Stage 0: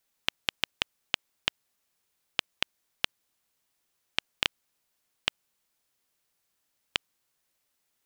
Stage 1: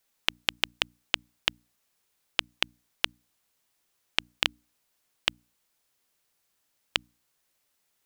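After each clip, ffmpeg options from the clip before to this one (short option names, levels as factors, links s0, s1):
-af "bandreject=f=60:t=h:w=6,bandreject=f=120:t=h:w=6,bandreject=f=180:t=h:w=6,bandreject=f=240:t=h:w=6,bandreject=f=300:t=h:w=6,volume=1.33"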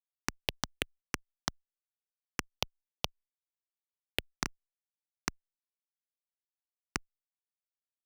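-filter_complex "[0:a]acompressor=threshold=0.0501:ratio=6,acrusher=bits=3:dc=4:mix=0:aa=0.000001,asplit=2[s0][s1];[s1]afreqshift=2.4[s2];[s0][s2]amix=inputs=2:normalize=1,volume=1.26"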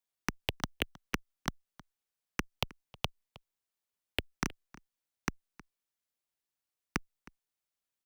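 -filter_complex "[0:a]acrossover=split=340|3000[s0][s1][s2];[s1]acompressor=threshold=0.00891:ratio=2[s3];[s0][s3][s2]amix=inputs=3:normalize=0,acrossover=split=650|2900[s4][s5][s6];[s6]asoftclip=type=hard:threshold=0.0266[s7];[s4][s5][s7]amix=inputs=3:normalize=0,asplit=2[s8][s9];[s9]adelay=314.9,volume=0.1,highshelf=f=4000:g=-7.08[s10];[s8][s10]amix=inputs=2:normalize=0,volume=1.78"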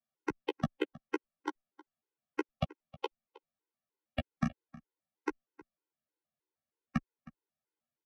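-filter_complex "[0:a]bandpass=f=300:t=q:w=0.52:csg=0,asplit=2[s0][s1];[s1]adelay=13,volume=0.501[s2];[s0][s2]amix=inputs=2:normalize=0,afftfilt=real='re*gt(sin(2*PI*3.2*pts/sr)*(1-2*mod(floor(b*sr/1024/270),2)),0)':imag='im*gt(sin(2*PI*3.2*pts/sr)*(1-2*mod(floor(b*sr/1024/270),2)),0)':win_size=1024:overlap=0.75,volume=2.51"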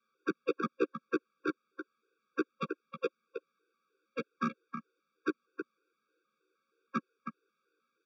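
-filter_complex "[0:a]asplit=2[s0][s1];[s1]highpass=f=720:p=1,volume=39.8,asoftclip=type=tanh:threshold=0.141[s2];[s0][s2]amix=inputs=2:normalize=0,lowpass=f=1200:p=1,volume=0.501,highpass=f=210:w=0.5412,highpass=f=210:w=1.3066,equalizer=f=260:t=q:w=4:g=-10,equalizer=f=690:t=q:w=4:g=-3,equalizer=f=3000:t=q:w=4:g=-8,lowpass=f=5300:w=0.5412,lowpass=f=5300:w=1.3066,afftfilt=real='re*eq(mod(floor(b*sr/1024/550),2),0)':imag='im*eq(mod(floor(b*sr/1024/550),2),0)':win_size=1024:overlap=0.75,volume=1.19"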